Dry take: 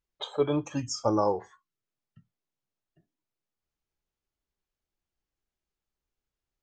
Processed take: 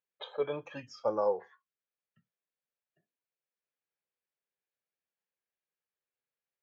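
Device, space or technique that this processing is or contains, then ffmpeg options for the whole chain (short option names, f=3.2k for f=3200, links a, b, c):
kitchen radio: -filter_complex "[0:a]highpass=210,equalizer=f=300:t=q:w=4:g=-10,equalizer=f=510:t=q:w=4:g=8,equalizer=f=1.7k:t=q:w=4:g=7,equalizer=f=2.4k:t=q:w=4:g=5,lowpass=f=4.1k:w=0.5412,lowpass=f=4.1k:w=1.3066,asettb=1/sr,asplit=3[a][b][c];[a]atrim=end=0.704[d];[b]atrim=start=0.7:end=1.29,asetpts=PTS-STARTPTS,afade=t=in:d=0.004:c=qsin,afade=t=out:st=0.586:d=0.004:c=qsin,equalizer=f=3.8k:w=1.5:g=4.5[e];[c]atrim=start=1.286[f];[d][e]acrossfade=d=0.004:c1=hsin:c2=qsin[g];[g][f]acrossfade=d=0.004:c1=qsin:c2=hsin,volume=-7.5dB"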